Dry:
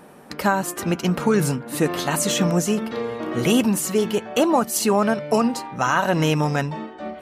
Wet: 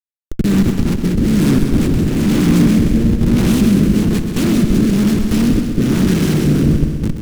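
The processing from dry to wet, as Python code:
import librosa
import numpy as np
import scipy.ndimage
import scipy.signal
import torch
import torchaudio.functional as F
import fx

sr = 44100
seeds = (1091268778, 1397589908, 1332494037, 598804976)

p1 = fx.spec_flatten(x, sr, power=0.23)
p2 = fx.peak_eq(p1, sr, hz=200.0, db=12.5, octaves=0.99)
p3 = fx.schmitt(p2, sr, flips_db=-20.0)
p4 = fx.rotary(p3, sr, hz=1.1)
p5 = fx.low_shelf_res(p4, sr, hz=450.0, db=11.0, q=1.5)
p6 = p5 + fx.echo_heads(p5, sr, ms=64, heads='second and third', feedback_pct=54, wet_db=-9, dry=0)
y = F.gain(torch.from_numpy(p6), -2.5).numpy()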